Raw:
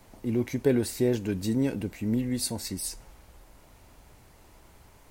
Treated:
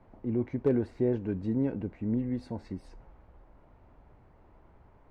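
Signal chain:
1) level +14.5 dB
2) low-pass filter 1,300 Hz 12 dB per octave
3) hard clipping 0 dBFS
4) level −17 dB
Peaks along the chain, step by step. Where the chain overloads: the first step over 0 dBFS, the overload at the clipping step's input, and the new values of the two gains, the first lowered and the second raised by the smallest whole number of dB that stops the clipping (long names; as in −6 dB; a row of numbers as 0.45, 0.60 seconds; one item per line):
+3.5, +3.0, 0.0, −17.0 dBFS
step 1, 3.0 dB
step 1 +11.5 dB, step 4 −14 dB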